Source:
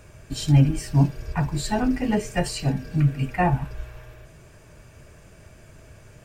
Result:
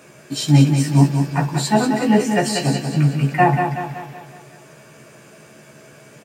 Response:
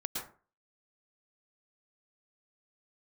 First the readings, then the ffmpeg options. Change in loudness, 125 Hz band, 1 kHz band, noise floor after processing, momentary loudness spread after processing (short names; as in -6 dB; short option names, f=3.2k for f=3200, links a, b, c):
+5.5 dB, +4.5 dB, +9.0 dB, -46 dBFS, 13 LU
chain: -filter_complex "[0:a]highpass=f=160:w=0.5412,highpass=f=160:w=1.3066,asplit=2[a][b];[b]adelay=14,volume=-5dB[c];[a][c]amix=inputs=2:normalize=0,asplit=2[d][e];[e]aecho=0:1:187|374|561|748|935|1122:0.473|0.232|0.114|0.0557|0.0273|0.0134[f];[d][f]amix=inputs=2:normalize=0,volume=5.5dB"